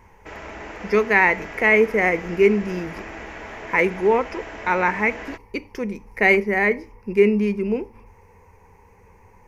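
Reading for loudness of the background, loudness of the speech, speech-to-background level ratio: -36.0 LUFS, -20.0 LUFS, 16.0 dB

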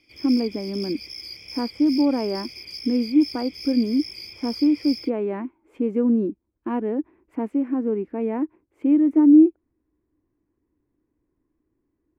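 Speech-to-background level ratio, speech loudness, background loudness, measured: 13.5 dB, -22.0 LUFS, -35.5 LUFS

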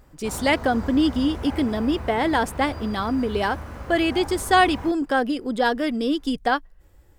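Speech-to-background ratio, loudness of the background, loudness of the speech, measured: 12.5 dB, -35.5 LUFS, -23.0 LUFS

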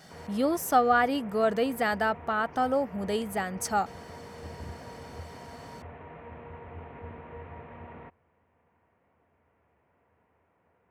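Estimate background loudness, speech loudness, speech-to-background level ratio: -45.5 LUFS, -27.5 LUFS, 18.0 dB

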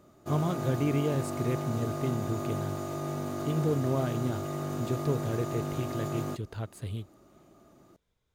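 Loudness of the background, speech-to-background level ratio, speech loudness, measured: -35.0 LUFS, 2.0 dB, -33.0 LUFS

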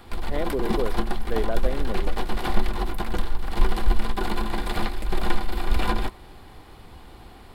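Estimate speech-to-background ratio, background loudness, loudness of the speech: -2.5 dB, -29.5 LUFS, -32.0 LUFS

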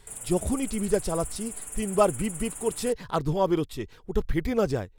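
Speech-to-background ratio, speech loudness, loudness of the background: 8.5 dB, -28.0 LUFS, -36.5 LUFS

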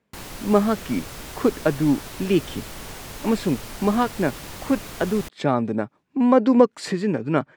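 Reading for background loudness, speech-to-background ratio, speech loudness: -36.5 LUFS, 14.0 dB, -22.5 LUFS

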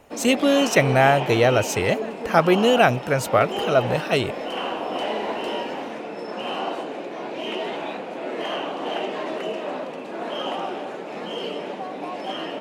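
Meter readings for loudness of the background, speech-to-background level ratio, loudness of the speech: -29.0 LUFS, 9.0 dB, -20.0 LUFS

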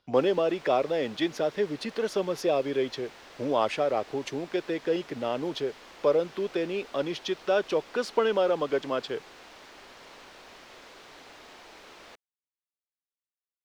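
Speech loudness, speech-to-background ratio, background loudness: -29.0 LUFS, 19.5 dB, -48.5 LUFS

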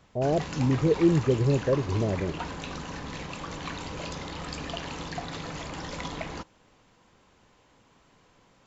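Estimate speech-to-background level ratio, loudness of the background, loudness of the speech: 10.5 dB, -36.5 LUFS, -26.0 LUFS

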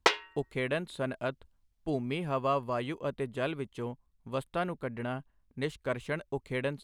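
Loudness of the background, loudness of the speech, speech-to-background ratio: -31.5 LUFS, -35.0 LUFS, -3.5 dB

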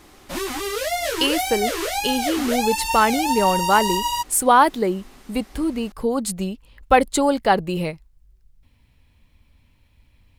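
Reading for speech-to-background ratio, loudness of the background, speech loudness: 3.0 dB, -24.0 LUFS, -21.0 LUFS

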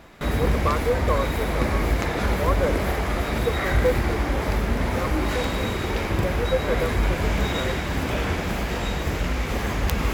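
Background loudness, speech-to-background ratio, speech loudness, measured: -25.0 LUFS, -5.0 dB, -30.0 LUFS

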